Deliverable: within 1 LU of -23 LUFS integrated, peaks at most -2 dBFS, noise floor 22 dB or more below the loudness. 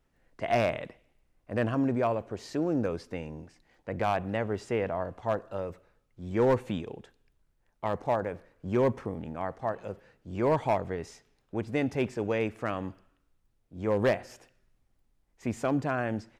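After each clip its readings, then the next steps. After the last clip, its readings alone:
clipped samples 0.3%; clipping level -18.0 dBFS; loudness -31.0 LUFS; peak level -18.0 dBFS; loudness target -23.0 LUFS
-> clip repair -18 dBFS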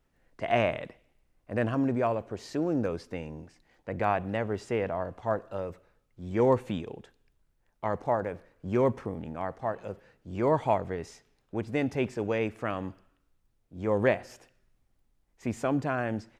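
clipped samples 0.0%; loudness -30.5 LUFS; peak level -10.5 dBFS; loudness target -23.0 LUFS
-> trim +7.5 dB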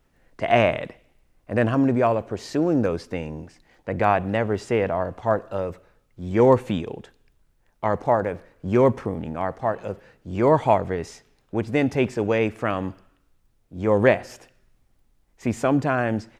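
loudness -23.0 LUFS; peak level -3.0 dBFS; noise floor -65 dBFS

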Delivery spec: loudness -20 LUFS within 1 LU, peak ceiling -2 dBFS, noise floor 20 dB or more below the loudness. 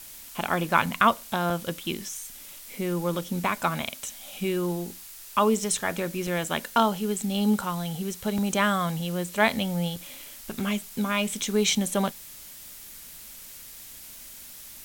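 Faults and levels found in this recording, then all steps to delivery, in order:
dropouts 6; longest dropout 3.3 ms; noise floor -44 dBFS; noise floor target -47 dBFS; loudness -27.0 LUFS; peak level -5.0 dBFS; loudness target -20.0 LUFS
-> interpolate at 0.86/1.50/6.27/8.38/9.96/10.60 s, 3.3 ms; noise print and reduce 6 dB; trim +7 dB; peak limiter -2 dBFS

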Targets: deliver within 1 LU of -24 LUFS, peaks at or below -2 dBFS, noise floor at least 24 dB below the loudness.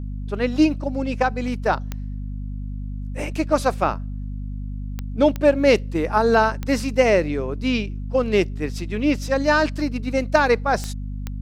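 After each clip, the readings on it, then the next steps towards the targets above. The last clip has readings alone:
clicks found 6; hum 50 Hz; highest harmonic 250 Hz; hum level -27 dBFS; loudness -21.0 LUFS; peak level -3.5 dBFS; loudness target -24.0 LUFS
-> de-click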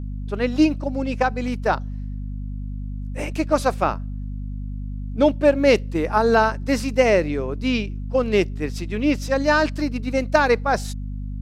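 clicks found 0; hum 50 Hz; highest harmonic 250 Hz; hum level -27 dBFS
-> de-hum 50 Hz, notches 5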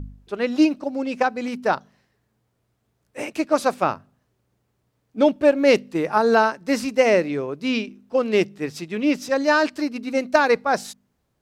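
hum not found; loudness -21.5 LUFS; peak level -3.0 dBFS; loudness target -24.0 LUFS
-> trim -2.5 dB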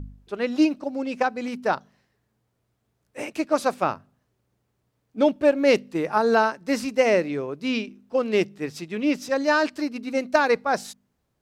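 loudness -24.0 LUFS; peak level -5.5 dBFS; noise floor -74 dBFS

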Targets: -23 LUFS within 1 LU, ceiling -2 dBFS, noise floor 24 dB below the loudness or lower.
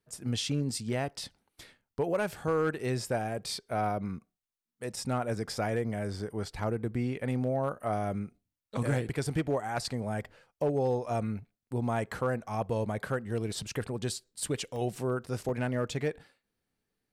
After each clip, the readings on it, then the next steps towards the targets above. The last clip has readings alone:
clipped samples 0.4%; clipping level -21.5 dBFS; dropouts 2; longest dropout 1.1 ms; loudness -33.0 LUFS; peak level -21.5 dBFS; loudness target -23.0 LUFS
-> clip repair -21.5 dBFS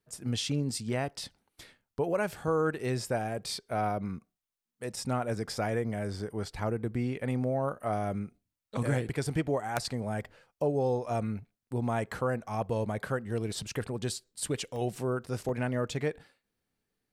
clipped samples 0.0%; dropouts 2; longest dropout 1.1 ms
-> interpolate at 14.76/15.49 s, 1.1 ms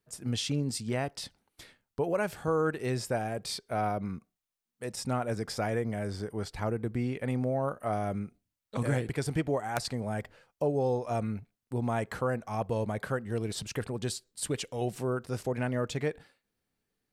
dropouts 0; loudness -33.0 LUFS; peak level -12.5 dBFS; loudness target -23.0 LUFS
-> trim +10 dB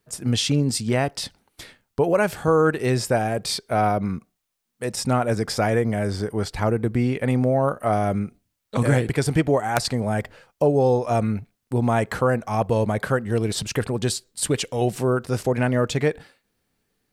loudness -23.0 LUFS; peak level -2.5 dBFS; noise floor -77 dBFS

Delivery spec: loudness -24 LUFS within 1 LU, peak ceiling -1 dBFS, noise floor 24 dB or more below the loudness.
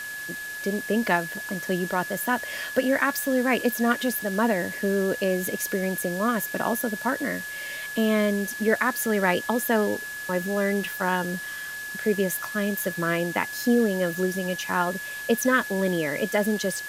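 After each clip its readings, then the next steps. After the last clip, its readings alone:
steady tone 1.7 kHz; tone level -33 dBFS; noise floor -35 dBFS; noise floor target -50 dBFS; loudness -25.5 LUFS; peak level -7.5 dBFS; loudness target -24.0 LUFS
-> band-stop 1.7 kHz, Q 30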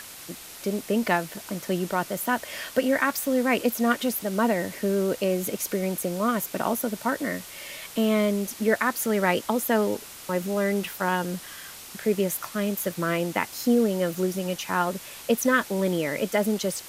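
steady tone not found; noise floor -43 dBFS; noise floor target -50 dBFS
-> noise reduction 7 dB, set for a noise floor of -43 dBFS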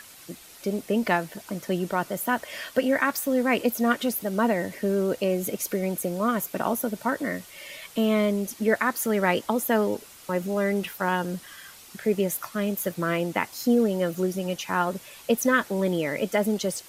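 noise floor -48 dBFS; noise floor target -50 dBFS
-> noise reduction 6 dB, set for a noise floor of -48 dBFS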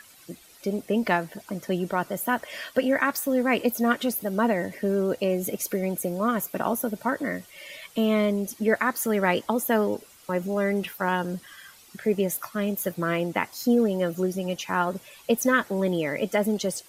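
noise floor -52 dBFS; loudness -26.0 LUFS; peak level -7.5 dBFS; loudness target -24.0 LUFS
-> trim +2 dB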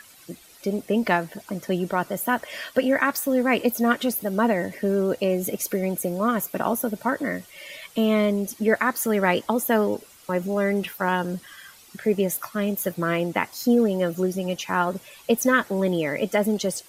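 loudness -24.0 LUFS; peak level -5.5 dBFS; noise floor -50 dBFS

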